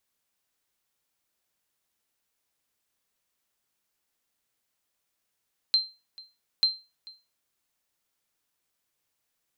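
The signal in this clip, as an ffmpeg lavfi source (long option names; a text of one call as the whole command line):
ffmpeg -f lavfi -i "aevalsrc='0.188*(sin(2*PI*4130*mod(t,0.89))*exp(-6.91*mod(t,0.89)/0.28)+0.0708*sin(2*PI*4130*max(mod(t,0.89)-0.44,0))*exp(-6.91*max(mod(t,0.89)-0.44,0)/0.28))':duration=1.78:sample_rate=44100" out.wav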